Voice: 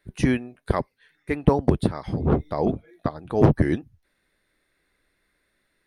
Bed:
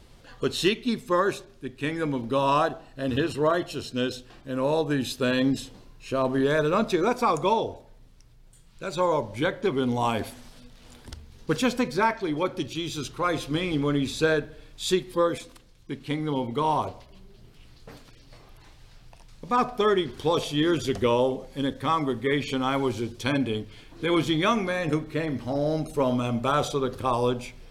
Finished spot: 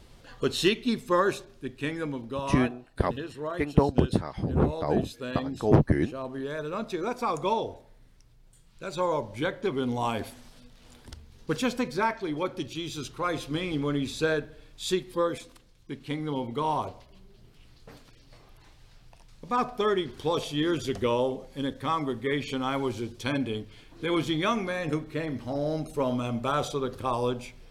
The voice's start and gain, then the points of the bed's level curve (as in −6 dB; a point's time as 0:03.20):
2.30 s, −3.0 dB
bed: 0:01.71 −0.5 dB
0:02.56 −11 dB
0:06.57 −11 dB
0:07.54 −3.5 dB